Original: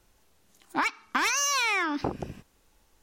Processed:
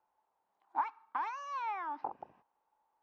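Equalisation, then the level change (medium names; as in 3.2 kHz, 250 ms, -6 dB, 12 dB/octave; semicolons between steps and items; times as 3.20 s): band-pass filter 880 Hz, Q 5.3; distance through air 93 m; 0.0 dB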